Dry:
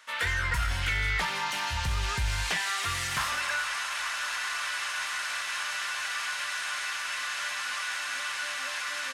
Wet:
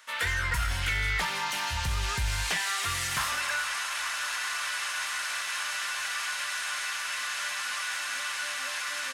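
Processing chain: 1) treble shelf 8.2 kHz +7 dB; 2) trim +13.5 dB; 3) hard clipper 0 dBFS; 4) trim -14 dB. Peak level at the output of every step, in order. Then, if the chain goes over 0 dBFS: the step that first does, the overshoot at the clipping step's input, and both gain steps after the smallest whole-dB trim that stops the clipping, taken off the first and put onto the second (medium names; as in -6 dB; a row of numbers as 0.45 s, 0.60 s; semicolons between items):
-17.5 dBFS, -4.0 dBFS, -4.0 dBFS, -18.0 dBFS; nothing clips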